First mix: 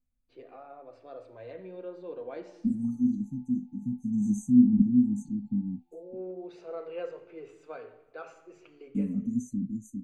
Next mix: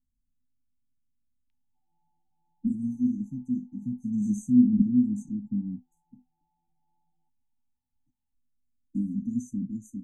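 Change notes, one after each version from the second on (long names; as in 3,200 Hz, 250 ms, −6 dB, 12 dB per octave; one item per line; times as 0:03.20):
first voice: muted
reverb: off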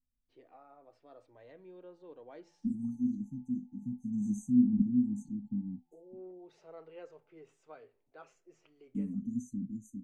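first voice: unmuted
second voice −6.0 dB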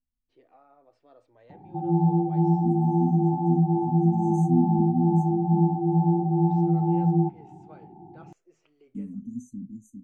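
background: remove inverse Chebyshev high-pass filter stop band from 740 Hz, stop band 60 dB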